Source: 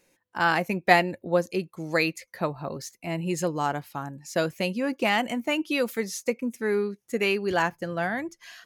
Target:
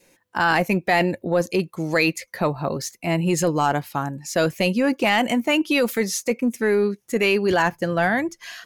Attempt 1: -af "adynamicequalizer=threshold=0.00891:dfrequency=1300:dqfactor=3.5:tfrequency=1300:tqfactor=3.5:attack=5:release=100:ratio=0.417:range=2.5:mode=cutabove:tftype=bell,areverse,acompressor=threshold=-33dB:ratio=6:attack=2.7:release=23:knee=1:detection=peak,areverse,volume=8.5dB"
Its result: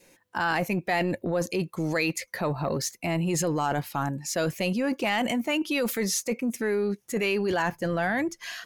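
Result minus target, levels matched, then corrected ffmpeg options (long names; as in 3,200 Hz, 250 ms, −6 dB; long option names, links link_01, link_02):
downward compressor: peak gain reduction +7 dB
-af "adynamicequalizer=threshold=0.00891:dfrequency=1300:dqfactor=3.5:tfrequency=1300:tqfactor=3.5:attack=5:release=100:ratio=0.417:range=2.5:mode=cutabove:tftype=bell,areverse,acompressor=threshold=-24.5dB:ratio=6:attack=2.7:release=23:knee=1:detection=peak,areverse,volume=8.5dB"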